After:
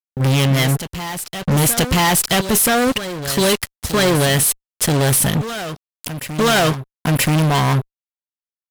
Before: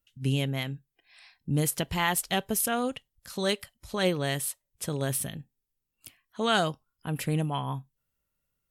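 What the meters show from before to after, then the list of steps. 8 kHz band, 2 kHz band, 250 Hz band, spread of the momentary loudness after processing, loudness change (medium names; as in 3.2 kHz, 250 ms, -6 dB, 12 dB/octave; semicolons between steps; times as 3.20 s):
+15.0 dB, +13.0 dB, +13.0 dB, 11 LU, +12.5 dB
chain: fuzz box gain 41 dB, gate -46 dBFS; reverse echo 978 ms -11.5 dB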